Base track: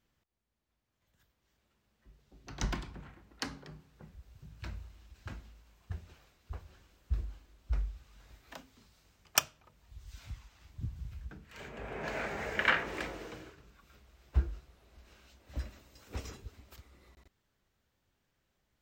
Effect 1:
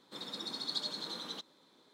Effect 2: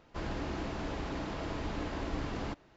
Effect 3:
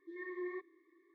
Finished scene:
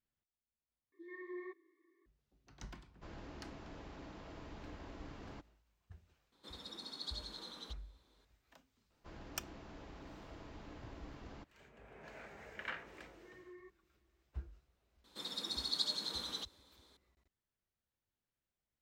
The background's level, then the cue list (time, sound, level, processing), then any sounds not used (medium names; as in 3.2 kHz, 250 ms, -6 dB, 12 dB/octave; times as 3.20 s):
base track -16 dB
0.92 s: replace with 3 -5 dB
2.87 s: add 2 -14 dB, fades 0.10 s
6.32 s: add 1 -8 dB
8.90 s: add 2 -15.5 dB
13.09 s: add 3 -14.5 dB
15.04 s: add 1 -4 dB + treble shelf 3.3 kHz +8 dB